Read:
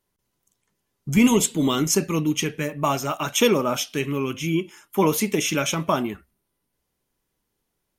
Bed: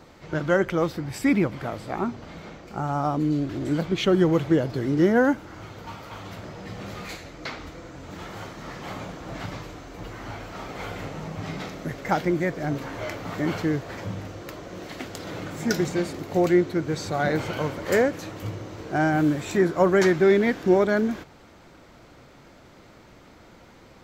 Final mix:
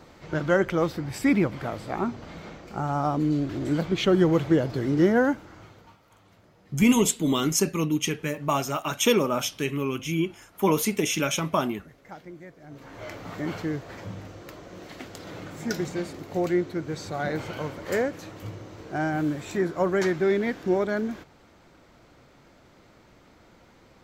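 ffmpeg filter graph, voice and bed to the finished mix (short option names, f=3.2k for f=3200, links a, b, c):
-filter_complex "[0:a]adelay=5650,volume=-2.5dB[a];[1:a]volume=14dB,afade=t=out:st=5.05:d=0.93:silence=0.112202,afade=t=in:st=12.68:d=0.48:silence=0.188365[b];[a][b]amix=inputs=2:normalize=0"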